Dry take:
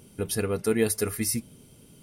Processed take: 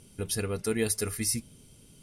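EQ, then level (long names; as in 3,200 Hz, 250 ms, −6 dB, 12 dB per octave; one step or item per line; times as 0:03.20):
low-pass filter 10,000 Hz 12 dB per octave
low-shelf EQ 79 Hz +12 dB
high-shelf EQ 2,400 Hz +8.5 dB
−6.0 dB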